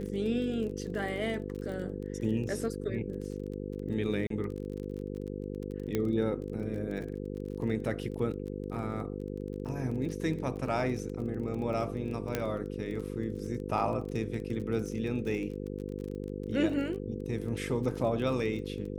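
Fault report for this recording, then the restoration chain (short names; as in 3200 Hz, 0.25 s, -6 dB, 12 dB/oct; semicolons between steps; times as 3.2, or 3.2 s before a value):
buzz 50 Hz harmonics 10 -38 dBFS
crackle 26/s -38 dBFS
4.27–4.3 gap 33 ms
5.95 pop -17 dBFS
12.35 pop -15 dBFS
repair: de-click; de-hum 50 Hz, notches 10; interpolate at 4.27, 33 ms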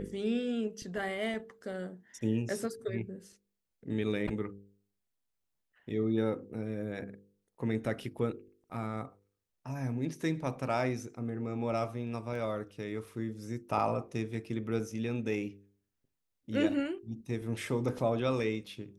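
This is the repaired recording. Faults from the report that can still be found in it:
5.95 pop
12.35 pop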